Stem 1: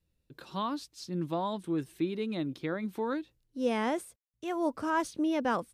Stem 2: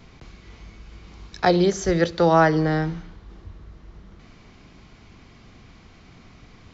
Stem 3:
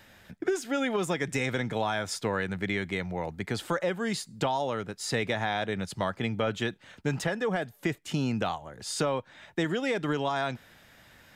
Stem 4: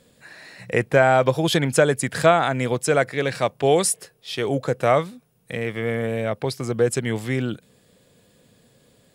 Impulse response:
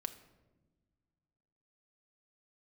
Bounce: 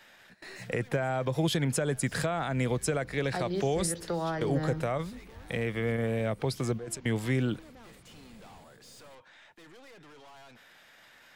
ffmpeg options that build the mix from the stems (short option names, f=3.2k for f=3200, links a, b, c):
-filter_complex "[0:a]adelay=2300,volume=-2.5dB[a];[1:a]alimiter=limit=-10dB:level=0:latency=1:release=324,adelay=1900,volume=-9dB[b];[2:a]asplit=2[c][d];[d]highpass=f=720:p=1,volume=24dB,asoftclip=type=tanh:threshold=-16dB[e];[c][e]amix=inputs=2:normalize=0,lowpass=f=6k:p=1,volume=-6dB,volume=-13dB,asplit=2[f][g];[3:a]volume=-2.5dB[h];[g]apad=whole_len=403455[i];[h][i]sidechaingate=range=-20dB:threshold=-46dB:ratio=16:detection=peak[j];[b][j]amix=inputs=2:normalize=0,alimiter=limit=-13.5dB:level=0:latency=1:release=98,volume=0dB[k];[a][f]amix=inputs=2:normalize=0,aeval=exprs='(tanh(89.1*val(0)+0.45)-tanh(0.45))/89.1':c=same,alimiter=level_in=23.5dB:limit=-24dB:level=0:latency=1:release=20,volume=-23.5dB,volume=0dB[l];[k][l]amix=inputs=2:normalize=0,acrossover=split=250[m][n];[n]acompressor=threshold=-31dB:ratio=2.5[o];[m][o]amix=inputs=2:normalize=0"